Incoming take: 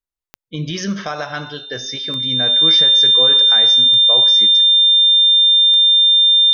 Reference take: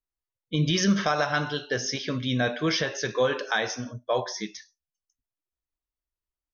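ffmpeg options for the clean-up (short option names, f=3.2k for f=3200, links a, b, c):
-af "adeclick=t=4,bandreject=f=3.6k:w=30"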